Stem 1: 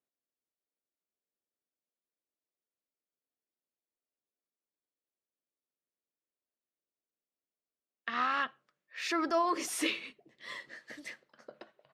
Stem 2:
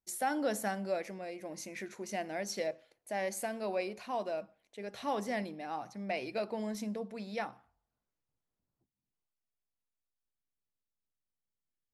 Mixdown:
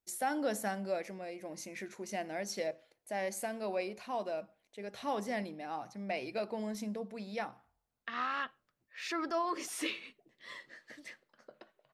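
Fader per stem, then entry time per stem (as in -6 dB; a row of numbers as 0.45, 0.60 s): -4.5, -1.0 dB; 0.00, 0.00 s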